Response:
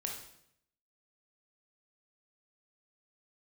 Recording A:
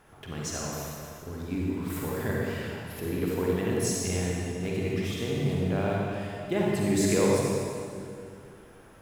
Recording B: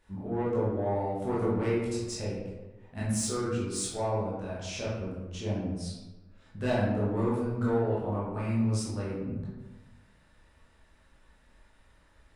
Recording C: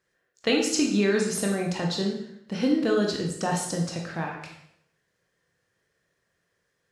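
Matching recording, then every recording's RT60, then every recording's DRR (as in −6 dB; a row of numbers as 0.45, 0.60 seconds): C; 2.4, 1.1, 0.70 seconds; −3.5, −8.0, 0.0 decibels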